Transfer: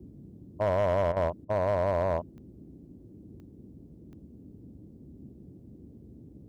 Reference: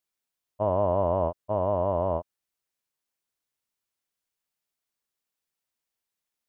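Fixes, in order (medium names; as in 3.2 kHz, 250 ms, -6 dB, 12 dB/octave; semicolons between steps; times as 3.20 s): clip repair -20.5 dBFS; de-click; interpolate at 1.12/1.45 s, 44 ms; noise print and reduce 30 dB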